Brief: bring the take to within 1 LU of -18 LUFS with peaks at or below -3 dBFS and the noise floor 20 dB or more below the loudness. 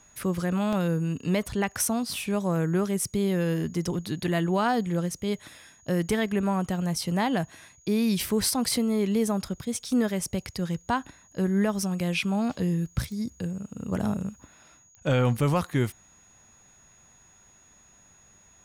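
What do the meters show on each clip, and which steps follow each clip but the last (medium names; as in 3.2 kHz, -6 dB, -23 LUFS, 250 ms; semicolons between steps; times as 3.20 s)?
clicks found 5; steady tone 6.7 kHz; tone level -56 dBFS; loudness -27.5 LUFS; peak level -14.0 dBFS; loudness target -18.0 LUFS
-> de-click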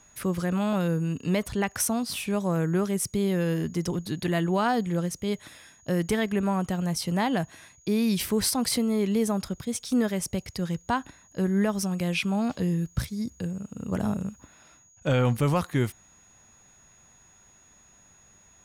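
clicks found 0; steady tone 6.7 kHz; tone level -56 dBFS
-> band-stop 6.7 kHz, Q 30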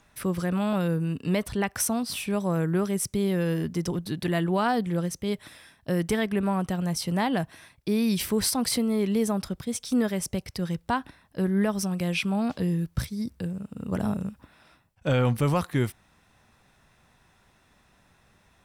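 steady tone not found; loudness -27.5 LUFS; peak level -14.0 dBFS; loudness target -18.0 LUFS
-> trim +9.5 dB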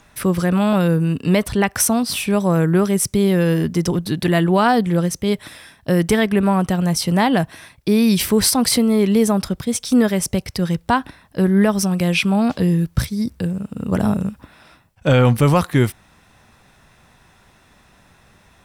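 loudness -18.0 LUFS; peak level -4.5 dBFS; noise floor -54 dBFS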